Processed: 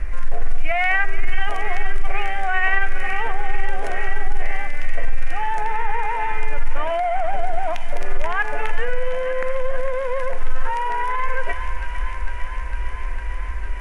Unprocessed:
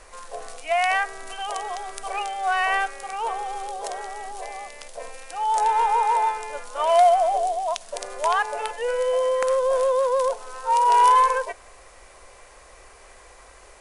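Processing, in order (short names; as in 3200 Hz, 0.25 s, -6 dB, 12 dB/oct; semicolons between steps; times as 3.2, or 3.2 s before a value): in parallel at -3 dB: compressor, threshold -28 dBFS, peak gain reduction 14.5 dB; on the sum: RIAA curve playback; thin delay 0.453 s, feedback 80%, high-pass 1500 Hz, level -10 dB; on a send at -17 dB: reverb, pre-delay 7 ms; on the sum: limiter -12.5 dBFS, peak gain reduction 7.5 dB; soft clip -12.5 dBFS, distortion -23 dB; graphic EQ 125/500/1000/2000/4000/8000 Hz -9/-11/-11/+7/-11/-9 dB; gain +8.5 dB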